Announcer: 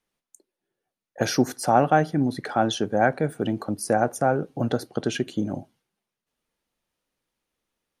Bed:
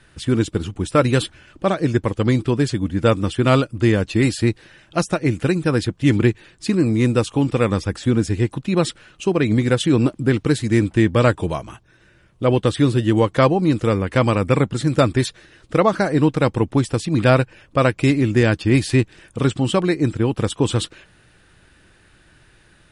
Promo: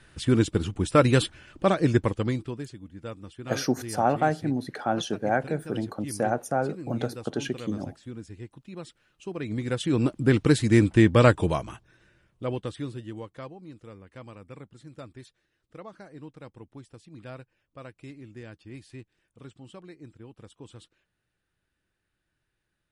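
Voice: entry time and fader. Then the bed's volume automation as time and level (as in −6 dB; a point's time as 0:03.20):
2.30 s, −4.5 dB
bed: 0:02.02 −3 dB
0:02.77 −22 dB
0:08.93 −22 dB
0:10.38 −2 dB
0:11.61 −2 dB
0:13.58 −27.5 dB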